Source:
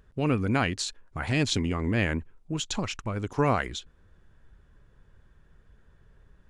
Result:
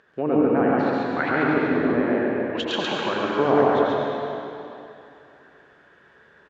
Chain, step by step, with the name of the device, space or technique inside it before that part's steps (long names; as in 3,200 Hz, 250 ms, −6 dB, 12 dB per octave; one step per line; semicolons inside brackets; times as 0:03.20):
0:01.99–0:02.60: Chebyshev band-pass filter 410–4,600 Hz, order 2
treble cut that deepens with the level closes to 680 Hz, closed at −24.5 dBFS
station announcement (band-pass filter 380–4,300 Hz; parametric band 1,700 Hz +6 dB 0.35 octaves; loudspeakers that aren't time-aligned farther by 31 metres −10 dB, 47 metres −1 dB; convolution reverb RT60 2.8 s, pre-delay 78 ms, DRR −2.5 dB)
level +7 dB